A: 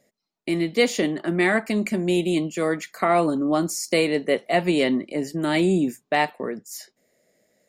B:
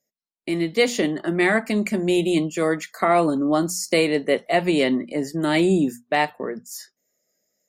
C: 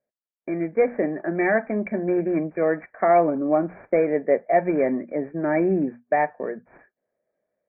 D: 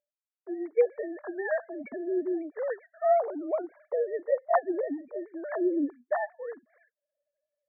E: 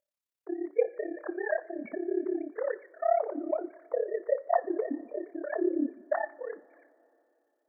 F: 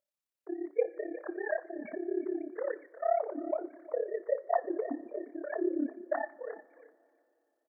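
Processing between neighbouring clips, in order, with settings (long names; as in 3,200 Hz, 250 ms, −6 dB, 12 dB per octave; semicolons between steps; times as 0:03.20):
mains-hum notches 60/120/180/240 Hz; noise reduction from a noise print of the clip's start 15 dB; automatic gain control gain up to 5.5 dB; level −3 dB
running median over 15 samples; Chebyshev low-pass with heavy ripple 2,400 Hz, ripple 9 dB; level +3.5 dB
three sine waves on the formant tracks; level −7.5 dB
in parallel at −2 dB: downward compressor, threshold −33 dBFS, peak gain reduction 15 dB; on the sum: amplitude modulation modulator 34 Hz, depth 95%; coupled-rooms reverb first 0.35 s, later 3 s, from −18 dB, DRR 13 dB
single-tap delay 358 ms −17 dB; level −3 dB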